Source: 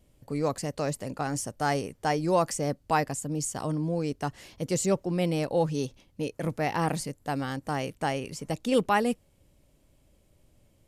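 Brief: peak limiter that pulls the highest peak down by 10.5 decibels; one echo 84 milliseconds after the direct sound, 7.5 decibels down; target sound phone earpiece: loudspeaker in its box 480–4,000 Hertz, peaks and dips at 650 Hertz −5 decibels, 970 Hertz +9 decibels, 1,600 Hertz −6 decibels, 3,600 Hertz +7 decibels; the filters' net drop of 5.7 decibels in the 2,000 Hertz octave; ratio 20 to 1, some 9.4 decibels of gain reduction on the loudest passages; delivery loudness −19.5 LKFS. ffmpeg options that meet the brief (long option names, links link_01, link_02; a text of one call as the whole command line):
ffmpeg -i in.wav -af "equalizer=frequency=2000:width_type=o:gain=-4.5,acompressor=threshold=-28dB:ratio=20,alimiter=level_in=4.5dB:limit=-24dB:level=0:latency=1,volume=-4.5dB,highpass=480,equalizer=frequency=650:width_type=q:width=4:gain=-5,equalizer=frequency=970:width_type=q:width=4:gain=9,equalizer=frequency=1600:width_type=q:width=4:gain=-6,equalizer=frequency=3600:width_type=q:width=4:gain=7,lowpass=frequency=4000:width=0.5412,lowpass=frequency=4000:width=1.3066,aecho=1:1:84:0.422,volume=24dB" out.wav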